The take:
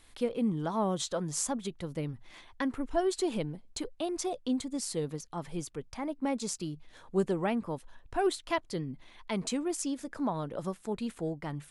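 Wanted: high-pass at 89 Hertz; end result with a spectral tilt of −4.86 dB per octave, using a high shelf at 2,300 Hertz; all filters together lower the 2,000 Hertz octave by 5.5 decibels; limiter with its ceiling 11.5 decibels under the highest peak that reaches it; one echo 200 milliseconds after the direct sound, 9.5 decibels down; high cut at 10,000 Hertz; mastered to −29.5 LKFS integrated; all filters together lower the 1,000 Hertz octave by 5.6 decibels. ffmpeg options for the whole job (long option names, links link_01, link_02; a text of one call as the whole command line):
ffmpeg -i in.wav -af "highpass=89,lowpass=10000,equalizer=frequency=1000:width_type=o:gain=-7.5,equalizer=frequency=2000:width_type=o:gain=-6.5,highshelf=frequency=2300:gain=4,alimiter=level_in=2dB:limit=-24dB:level=0:latency=1,volume=-2dB,aecho=1:1:200:0.335,volume=6.5dB" out.wav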